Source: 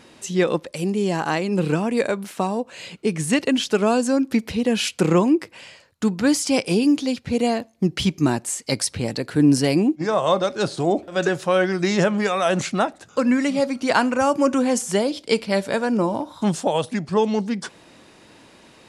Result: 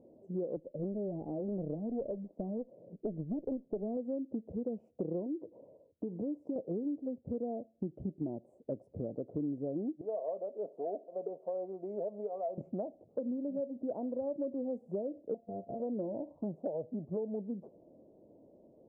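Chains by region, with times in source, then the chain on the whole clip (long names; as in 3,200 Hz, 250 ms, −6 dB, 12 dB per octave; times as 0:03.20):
0:00.56–0:03.97: high-pass filter 160 Hz + spectral tilt −4 dB per octave + tube saturation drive 11 dB, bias 0.75
0:05.26–0:06.56: downward compressor 10 to 1, threshold −24 dBFS + hollow resonant body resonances 300/440/960 Hz, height 7 dB, ringing for 25 ms
0:10.01–0:12.58: high-pass filter 550 Hz + comb filter 4.4 ms, depth 50%
0:15.34–0:15.80: samples sorted by size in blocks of 64 samples + noise gate −31 dBFS, range −11 dB + downward compressor 3 to 1, threshold −26 dBFS
whole clip: elliptic low-pass filter 620 Hz, stop band 60 dB; low-shelf EQ 320 Hz −12 dB; downward compressor 5 to 1, threshold −32 dBFS; level −2 dB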